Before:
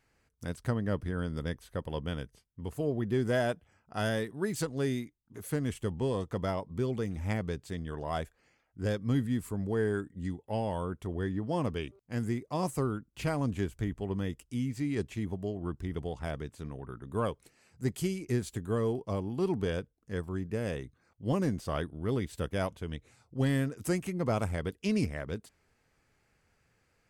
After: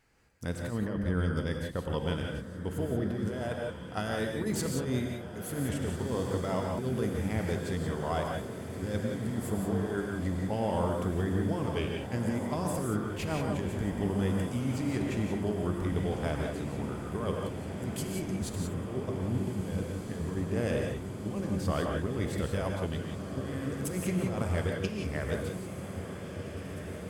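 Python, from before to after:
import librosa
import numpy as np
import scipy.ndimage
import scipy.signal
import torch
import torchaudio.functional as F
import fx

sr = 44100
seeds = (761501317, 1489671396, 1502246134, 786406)

y = fx.low_shelf(x, sr, hz=250.0, db=8.0, at=(18.07, 20.36))
y = fx.over_compress(y, sr, threshold_db=-32.0, ratio=-0.5)
y = fx.echo_diffused(y, sr, ms=1675, feedback_pct=78, wet_db=-10.0)
y = fx.rev_gated(y, sr, seeds[0], gate_ms=200, shape='rising', drr_db=1.5)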